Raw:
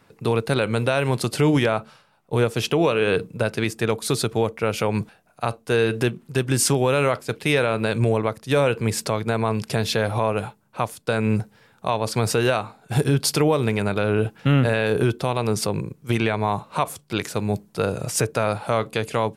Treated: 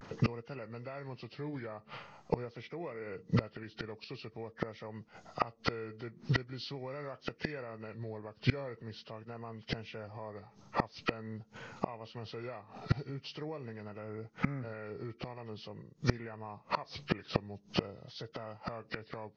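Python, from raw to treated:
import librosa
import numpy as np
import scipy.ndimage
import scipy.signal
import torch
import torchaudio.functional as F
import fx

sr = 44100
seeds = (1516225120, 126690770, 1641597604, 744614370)

y = fx.freq_compress(x, sr, knee_hz=1100.0, ratio=1.5)
y = fx.vibrato(y, sr, rate_hz=0.45, depth_cents=48.0)
y = fx.gate_flip(y, sr, shuts_db=-22.0, range_db=-30)
y = y * 10.0 ** (7.5 / 20.0)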